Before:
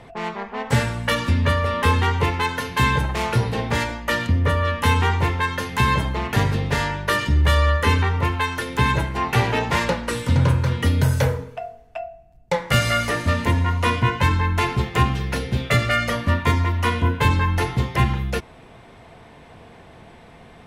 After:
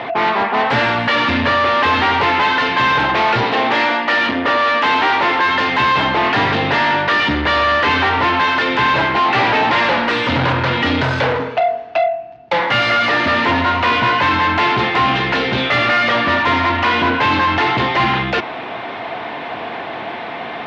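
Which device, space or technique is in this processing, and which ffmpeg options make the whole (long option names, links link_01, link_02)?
overdrive pedal into a guitar cabinet: -filter_complex "[0:a]asplit=2[link_01][link_02];[link_02]highpass=frequency=720:poles=1,volume=33dB,asoftclip=type=tanh:threshold=-4.5dB[link_03];[link_01][link_03]amix=inputs=2:normalize=0,lowpass=frequency=4300:poles=1,volume=-6dB,highpass=110,equalizer=frequency=170:width_type=q:width=4:gain=-5,equalizer=frequency=300:width_type=q:width=4:gain=4,equalizer=frequency=470:width_type=q:width=4:gain=-4,equalizer=frequency=730:width_type=q:width=4:gain=3,lowpass=frequency=4100:width=0.5412,lowpass=frequency=4100:width=1.3066,asettb=1/sr,asplit=3[link_04][link_05][link_06];[link_04]atrim=end=3.434[link_07];[link_05]atrim=start=3.43:end=5.45,asetpts=PTS-STARTPTS,afade=type=in:duration=0.004:curve=qsin,afade=type=out:start_time=2.016:duration=0.004:curve=qsin,highpass=210[link_08];[link_06]atrim=start=5.446[link_09];[link_07][link_08]acrossfade=duration=0.004:curve1=hsin:curve2=qsin[link_10];[link_10][link_09]acrossfade=duration=0.004:curve1=qsin:curve2=hsin,volume=-3dB"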